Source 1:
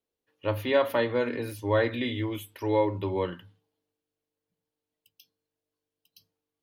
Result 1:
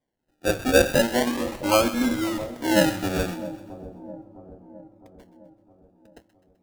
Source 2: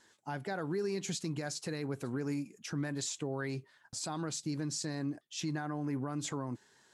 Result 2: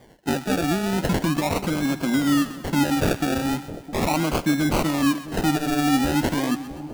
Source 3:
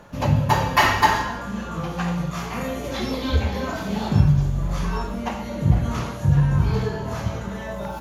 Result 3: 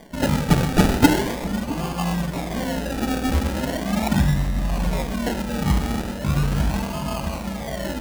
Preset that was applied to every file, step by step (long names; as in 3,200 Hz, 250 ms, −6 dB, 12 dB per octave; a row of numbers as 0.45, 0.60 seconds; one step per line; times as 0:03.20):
phaser with its sweep stopped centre 430 Hz, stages 6
sample-and-hold swept by an LFO 33×, swing 60% 0.39 Hz
echo with a time of its own for lows and highs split 850 Hz, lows 661 ms, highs 128 ms, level −14 dB
loudness normalisation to −23 LKFS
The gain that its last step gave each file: +9.0, +18.0, +4.5 decibels